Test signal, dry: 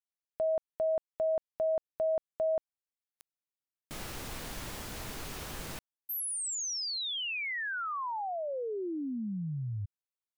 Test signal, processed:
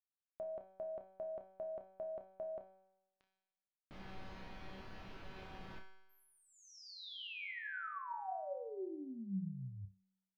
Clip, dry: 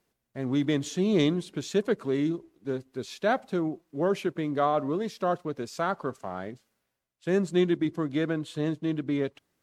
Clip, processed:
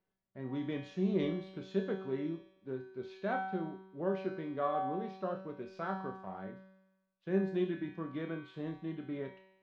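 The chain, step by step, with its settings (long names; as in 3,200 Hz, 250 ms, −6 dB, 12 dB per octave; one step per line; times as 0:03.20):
high-frequency loss of the air 290 metres
tuned comb filter 190 Hz, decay 0.96 s, mix 90%
flutter between parallel walls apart 5.2 metres, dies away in 0.21 s
level +7 dB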